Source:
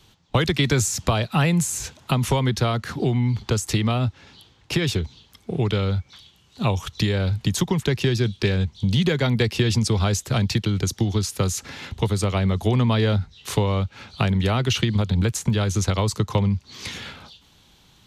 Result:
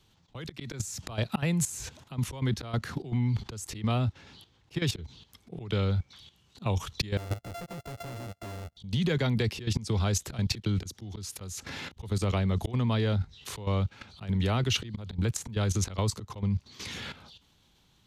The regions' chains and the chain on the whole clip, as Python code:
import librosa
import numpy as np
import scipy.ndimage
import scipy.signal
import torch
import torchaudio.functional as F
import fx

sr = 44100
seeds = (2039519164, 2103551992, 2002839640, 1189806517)

y = fx.chain(x, sr, fx.sample_sort(block=64),
    fx.overload_stage(gain_db=26.5),
    fx.upward_expand(threshold_db=-41.0, expansion=2.5), at=(7.17, 8.77))
y = fx.low_shelf(y, sr, hz=450.0, db=2.0)
y = fx.auto_swell(y, sr, attack_ms=208.0)
y = fx.level_steps(y, sr, step_db=13)